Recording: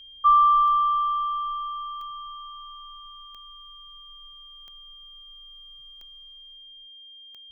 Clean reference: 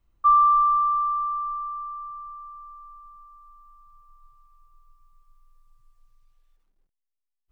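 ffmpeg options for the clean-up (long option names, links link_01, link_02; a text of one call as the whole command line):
ffmpeg -i in.wav -af "adeclick=threshold=4,bandreject=frequency=3200:width=30" out.wav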